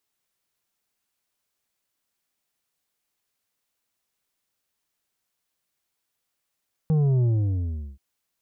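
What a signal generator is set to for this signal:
bass drop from 160 Hz, over 1.08 s, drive 7 dB, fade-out 0.75 s, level −18.5 dB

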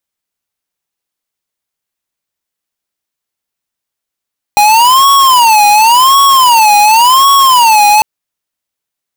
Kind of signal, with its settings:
siren wail 826–1,110 Hz 0.91 per second square −5.5 dBFS 3.45 s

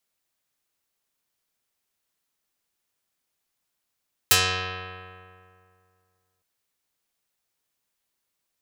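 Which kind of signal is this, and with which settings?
Karplus-Strong string F#2, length 2.11 s, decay 2.36 s, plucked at 0.32, dark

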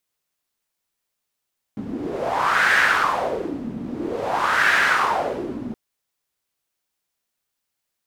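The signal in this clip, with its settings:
wind from filtered noise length 3.97 s, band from 230 Hz, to 1,700 Hz, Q 4, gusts 2, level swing 13.5 dB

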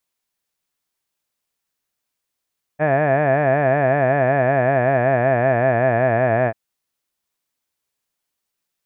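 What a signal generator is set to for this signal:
vowel by formant synthesis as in had, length 3.74 s, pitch 145 Hz, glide −3.5 semitones, vibrato depth 1.3 semitones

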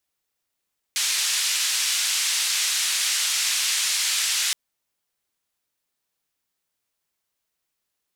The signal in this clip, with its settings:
band-limited noise 2,200–7,700 Hz, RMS −23.5 dBFS 3.57 s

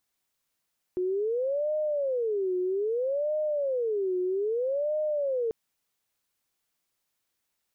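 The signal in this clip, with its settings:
siren wail 363–613 Hz 0.62 per second sine −25 dBFS 4.54 s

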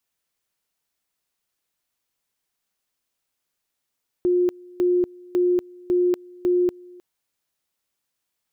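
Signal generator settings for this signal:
tone at two levels in turn 357 Hz −16 dBFS, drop 25 dB, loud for 0.24 s, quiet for 0.31 s, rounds 5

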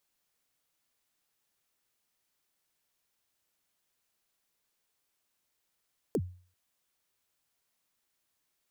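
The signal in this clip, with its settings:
synth kick length 0.39 s, from 520 Hz, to 90 Hz, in 56 ms, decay 0.43 s, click on, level −23 dB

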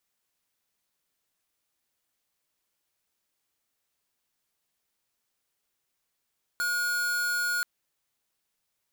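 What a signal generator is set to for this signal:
tone square 1,440 Hz −28 dBFS 1.03 s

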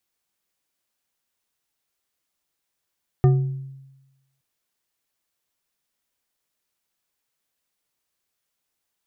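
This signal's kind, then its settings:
struck glass bar, length 1.17 s, lowest mode 135 Hz, decay 1.07 s, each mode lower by 7.5 dB, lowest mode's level −10.5 dB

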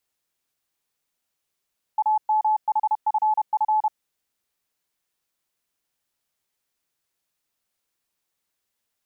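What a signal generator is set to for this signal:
Morse code "AMHFF" 31 words per minute 860 Hz −17 dBFS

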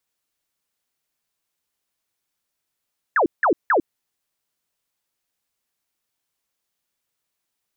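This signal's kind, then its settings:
repeated falling chirps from 1,900 Hz, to 280 Hz, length 0.10 s sine, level −14 dB, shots 3, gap 0.17 s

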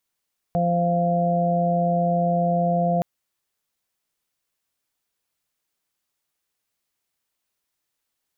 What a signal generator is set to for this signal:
steady harmonic partials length 2.47 s, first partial 173 Hz, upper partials −17/−4.5/0 dB, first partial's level −21.5 dB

